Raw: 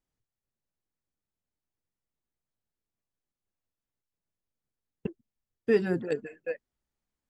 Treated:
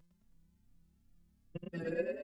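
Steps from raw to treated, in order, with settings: reverse; compression 5:1, threshold -39 dBFS, peak gain reduction 18 dB; reverse; granular stretch 0.51×, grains 135 ms; echo from a far wall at 22 m, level -8 dB; mains buzz 50 Hz, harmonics 5, -73 dBFS -9 dB/octave; robot voice 168 Hz; time stretch by phase-locked vocoder 0.6×; vibrato 2 Hz 55 cents; on a send: frequency-shifting echo 107 ms, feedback 57%, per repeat +33 Hz, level -4.5 dB; on the sum: endless flanger 3.6 ms +2.5 Hz; trim +12 dB

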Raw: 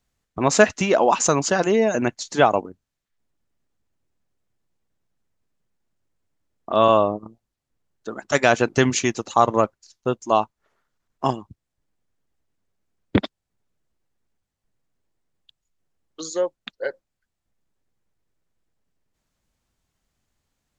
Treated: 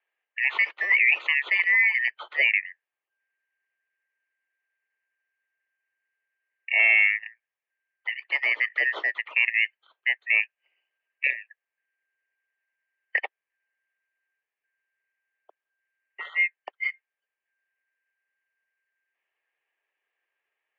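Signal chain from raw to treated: four frequency bands reordered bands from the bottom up 3142; peak limiter -8.5 dBFS, peak gain reduction 8.5 dB; 6.79–8.14 s: waveshaping leveller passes 1; peaking EQ 1.5 kHz -14 dB 0.21 oct; mistuned SSB +120 Hz 260–2800 Hz

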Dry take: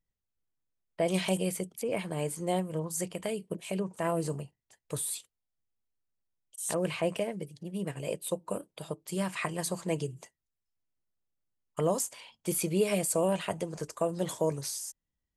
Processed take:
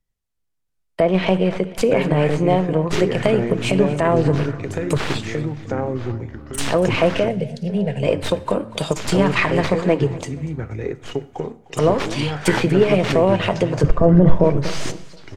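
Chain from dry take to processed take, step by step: tracing distortion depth 0.24 ms; compression 3:1, threshold -37 dBFS, peak gain reduction 11.5 dB; 13.83–14.44 s: tilt EQ -4.5 dB/octave; low-pass that closes with the level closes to 2.9 kHz, closed at -36 dBFS; 1.02–1.71 s: treble shelf 4.3 kHz -> 6.2 kHz -10 dB; feedback delay 241 ms, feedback 46%, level -17 dB; ever faster or slower copies 671 ms, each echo -4 st, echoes 3, each echo -6 dB; 7.28–8.03 s: static phaser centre 310 Hz, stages 6; reverberation, pre-delay 3 ms, DRR 14.5 dB; loudness maximiser +25.5 dB; three bands expanded up and down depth 40%; trim -4 dB

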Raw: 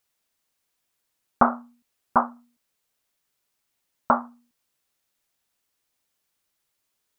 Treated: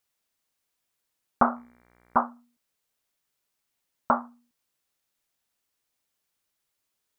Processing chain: 1.55–2.19 s: mains buzz 60 Hz, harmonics 39, -60 dBFS -2 dB/octave; trim -3 dB

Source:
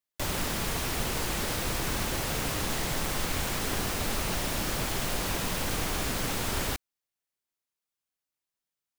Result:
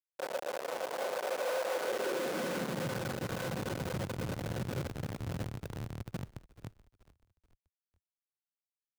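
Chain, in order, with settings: Doppler pass-by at 2.22 s, 12 m/s, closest 9.3 m; comb 5.4 ms, depth 69%; dynamic bell 8.4 kHz, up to +4 dB, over -51 dBFS, Q 1.6; compression 2:1, threshold -34 dBFS, peak gain reduction 5.5 dB; small resonant body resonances 510/1500 Hz, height 17 dB, ringing for 55 ms; Schmitt trigger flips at -30.5 dBFS; high-pass sweep 590 Hz -> 110 Hz, 1.69–3.04 s; frequency-shifting echo 431 ms, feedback 42%, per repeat -64 Hz, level -18 dB; trim -1.5 dB

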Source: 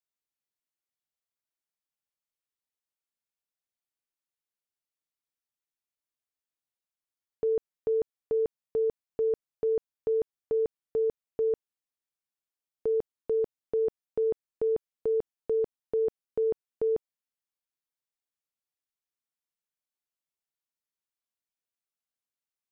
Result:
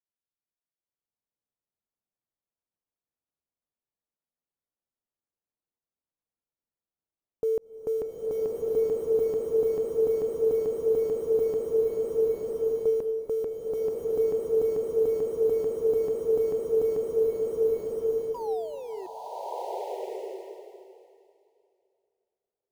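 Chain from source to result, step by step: level-controlled noise filter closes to 810 Hz, open at -24 dBFS; painted sound fall, 18.34–19.07 s, 360–1000 Hz -39 dBFS; in parallel at -10 dB: bit crusher 7-bit; on the sum: swelling reverb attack 1270 ms, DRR -6 dB; trim -2 dB

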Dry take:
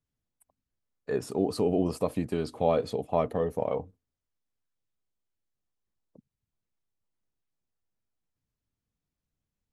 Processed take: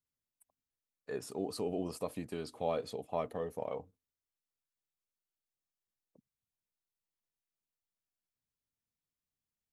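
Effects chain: tilt EQ +1.5 dB/octave; trim -8 dB

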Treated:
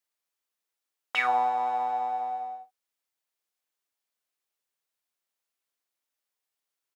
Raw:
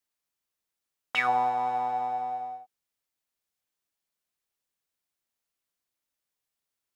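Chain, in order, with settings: tone controls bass -12 dB, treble -1 dB; doubling 45 ms -13.5 dB

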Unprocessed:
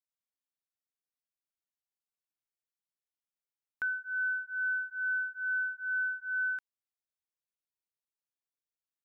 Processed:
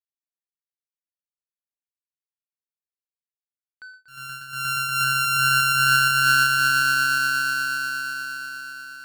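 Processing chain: 4.08–5.04 s: sorted samples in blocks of 32 samples; echo with a slow build-up 119 ms, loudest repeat 8, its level -5 dB; power-law waveshaper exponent 2; trim +6 dB

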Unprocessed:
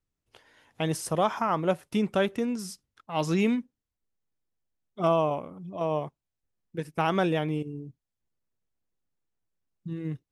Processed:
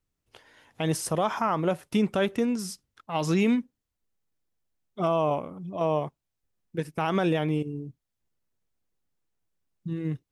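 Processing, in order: peak limiter -18 dBFS, peak gain reduction 6 dB; trim +3 dB

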